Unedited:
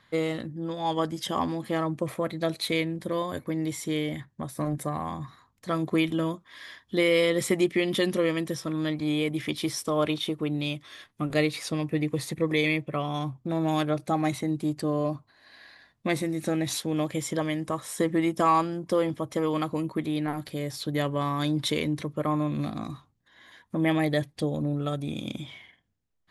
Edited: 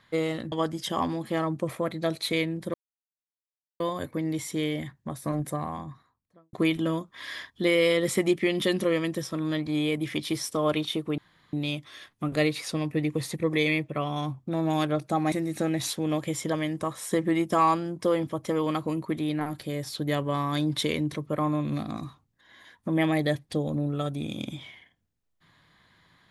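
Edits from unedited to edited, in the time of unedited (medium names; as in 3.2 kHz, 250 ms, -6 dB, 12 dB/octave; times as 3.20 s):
0.52–0.91 s: delete
3.13 s: insert silence 1.06 s
4.78–5.86 s: studio fade out
6.47–6.83 s: gain +6.5 dB
10.51 s: insert room tone 0.35 s
14.30–16.19 s: delete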